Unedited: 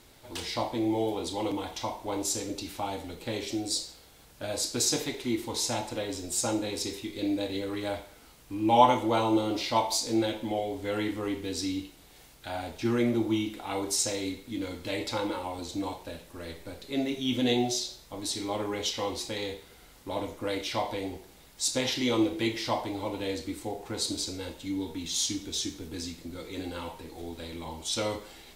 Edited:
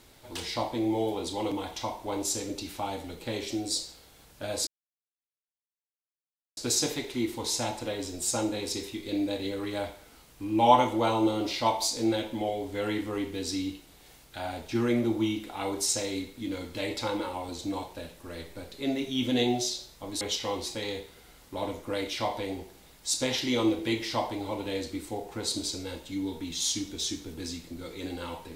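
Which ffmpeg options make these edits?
ffmpeg -i in.wav -filter_complex "[0:a]asplit=3[link_01][link_02][link_03];[link_01]atrim=end=4.67,asetpts=PTS-STARTPTS,afade=type=out:start_time=4.666:duration=0.004:curve=hsin,apad=pad_dur=1.9[link_04];[link_02]atrim=start=4.67:end=18.312,asetpts=PTS-STARTPTS,afade=type=in:duration=0.004:curve=hsin[link_05];[link_03]atrim=start=18.748[link_06];[link_04][link_05]concat=n=2:v=0:a=1[link_07];[link_07][link_06]acrossfade=duration=0.004:curve1=hsin:curve2=hsin" out.wav

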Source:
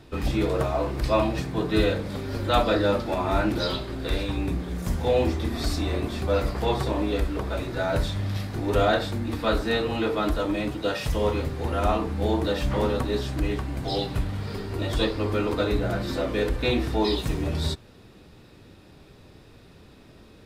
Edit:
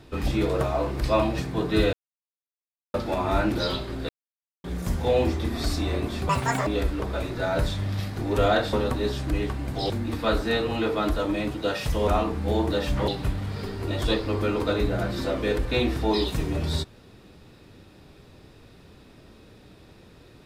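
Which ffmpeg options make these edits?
ffmpeg -i in.wav -filter_complex "[0:a]asplit=11[link_01][link_02][link_03][link_04][link_05][link_06][link_07][link_08][link_09][link_10][link_11];[link_01]atrim=end=1.93,asetpts=PTS-STARTPTS,afade=type=out:start_time=1.926:duration=0.004:curve=hsin[link_12];[link_02]atrim=start=1.93:end=2.94,asetpts=PTS-STARTPTS,volume=0[link_13];[link_03]atrim=start=2.94:end=4.09,asetpts=PTS-STARTPTS,afade=type=in:duration=0.004:curve=hsin,afade=type=out:start_time=1.146:duration=0.004:curve=hsin[link_14];[link_04]atrim=start=4.09:end=4.64,asetpts=PTS-STARTPTS,volume=0[link_15];[link_05]atrim=start=4.64:end=6.294,asetpts=PTS-STARTPTS,afade=type=in:duration=0.004:curve=hsin[link_16];[link_06]atrim=start=6.29:end=7.04,asetpts=PTS-STARTPTS,asetrate=87318,aresample=44100[link_17];[link_07]atrim=start=7.036:end=9.102[link_18];[link_08]atrim=start=12.818:end=13.992[link_19];[link_09]atrim=start=9.098:end=11.282[link_20];[link_10]atrim=start=11.818:end=12.822[link_21];[link_11]atrim=start=13.988[link_22];[link_12][link_13][link_14][link_15][link_16]concat=n=5:v=0:a=1[link_23];[link_23][link_17]acrossfade=duration=0.004:curve1=hsin:curve2=hsin[link_24];[link_24][link_18]acrossfade=duration=0.004:curve1=hsin:curve2=hsin[link_25];[link_25][link_19]acrossfade=duration=0.004:curve1=hsin:curve2=hsin[link_26];[link_26][link_20]acrossfade=duration=0.004:curve1=hsin:curve2=hsin[link_27];[link_27][link_21]acrossfade=duration=0.004:curve1=hsin:curve2=hsin[link_28];[link_28][link_22]acrossfade=duration=0.004:curve1=hsin:curve2=hsin" out.wav

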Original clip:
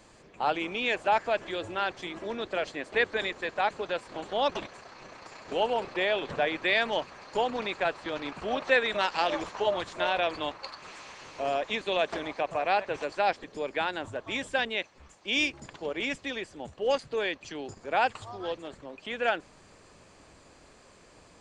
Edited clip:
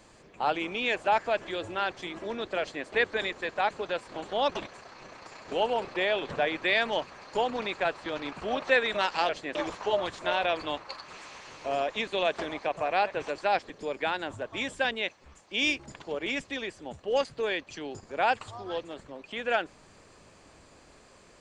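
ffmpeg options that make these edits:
ffmpeg -i in.wav -filter_complex "[0:a]asplit=3[link_01][link_02][link_03];[link_01]atrim=end=9.292[link_04];[link_02]atrim=start=2.598:end=2.862[link_05];[link_03]atrim=start=9.288[link_06];[link_04][link_05]acrossfade=duration=0.004:curve1=hsin:curve2=hsin[link_07];[link_07][link_06]acrossfade=duration=0.004:curve1=hsin:curve2=hsin" out.wav

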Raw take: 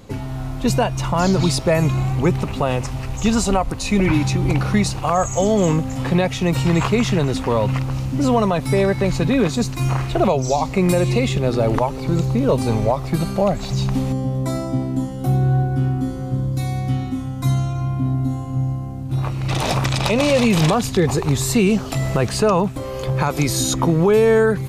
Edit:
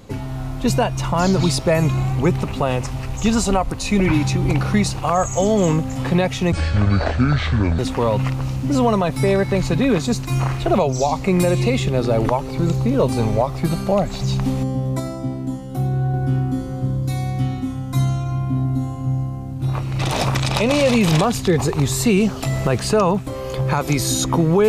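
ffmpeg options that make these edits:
ffmpeg -i in.wav -filter_complex "[0:a]asplit=5[link_01][link_02][link_03][link_04][link_05];[link_01]atrim=end=6.524[link_06];[link_02]atrim=start=6.52:end=7.28,asetpts=PTS-STARTPTS,asetrate=26460,aresample=44100[link_07];[link_03]atrim=start=7.276:end=14.492[link_08];[link_04]atrim=start=14.488:end=15.632,asetpts=PTS-STARTPTS,volume=-3.5dB[link_09];[link_05]atrim=start=15.628[link_10];[link_06][link_07]acrossfade=duration=0.004:curve1=hsin:curve2=hsin[link_11];[link_11][link_08]acrossfade=duration=0.004:curve1=hsin:curve2=hsin[link_12];[link_12][link_09]acrossfade=duration=0.004:curve1=hsin:curve2=hsin[link_13];[link_13][link_10]acrossfade=duration=0.004:curve1=hsin:curve2=hsin" out.wav

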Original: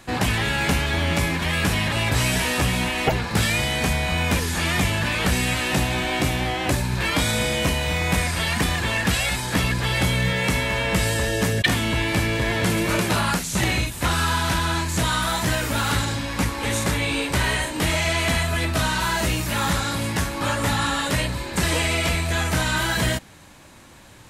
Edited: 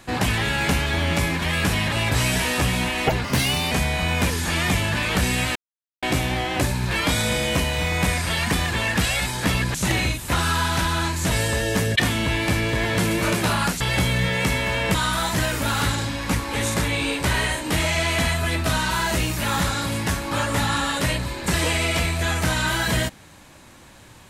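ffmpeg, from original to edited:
ffmpeg -i in.wav -filter_complex "[0:a]asplit=9[link_01][link_02][link_03][link_04][link_05][link_06][link_07][link_08][link_09];[link_01]atrim=end=3.244[link_10];[link_02]atrim=start=3.24:end=3.81,asetpts=PTS-STARTPTS,asetrate=52920,aresample=44100[link_11];[link_03]atrim=start=3.806:end=5.65,asetpts=PTS-STARTPTS,afade=type=out:start_time=1.84:duration=0.004:curve=hsin[link_12];[link_04]atrim=start=5.65:end=6.12,asetpts=PTS-STARTPTS,volume=0[link_13];[link_05]atrim=start=6.12:end=9.842,asetpts=PTS-STARTPTS,afade=type=in:duration=0.004:curve=hsin[link_14];[link_06]atrim=start=13.468:end=15.042[link_15];[link_07]atrim=start=10.978:end=13.472[link_16];[link_08]atrim=start=9.838:end=10.982[link_17];[link_09]atrim=start=15.038[link_18];[link_10][link_11]acrossfade=duration=0.004:curve1=hsin:curve2=hsin[link_19];[link_12][link_13][link_14]concat=n=3:v=0:a=1[link_20];[link_19][link_20]acrossfade=duration=0.004:curve1=hsin:curve2=hsin[link_21];[link_21][link_15]acrossfade=duration=0.004:curve1=hsin:curve2=hsin[link_22];[link_22][link_16]acrossfade=duration=0.004:curve1=hsin:curve2=hsin[link_23];[link_23][link_17]acrossfade=duration=0.004:curve1=hsin:curve2=hsin[link_24];[link_24][link_18]acrossfade=duration=0.004:curve1=hsin:curve2=hsin" out.wav

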